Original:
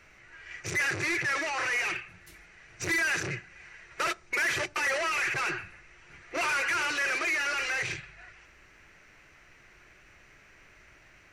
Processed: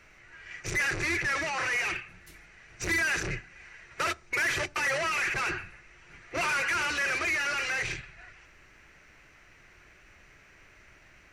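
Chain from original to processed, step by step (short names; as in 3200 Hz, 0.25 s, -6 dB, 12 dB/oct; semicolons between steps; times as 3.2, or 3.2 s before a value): octaver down 2 oct, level -2 dB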